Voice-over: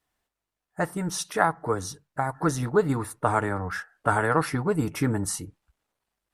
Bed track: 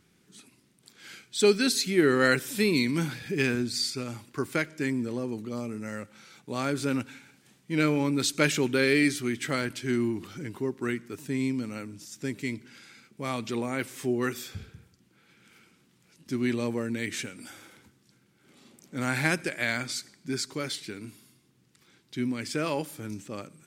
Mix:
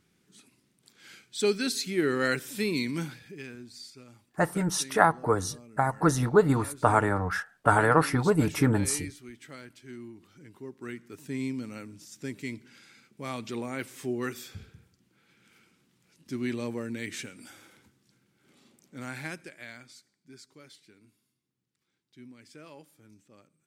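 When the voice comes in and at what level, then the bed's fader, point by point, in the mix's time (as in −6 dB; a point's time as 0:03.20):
3.60 s, +1.5 dB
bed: 0:03.01 −4.5 dB
0:03.42 −16.5 dB
0:10.23 −16.5 dB
0:11.34 −4 dB
0:18.52 −4 dB
0:20.00 −19.5 dB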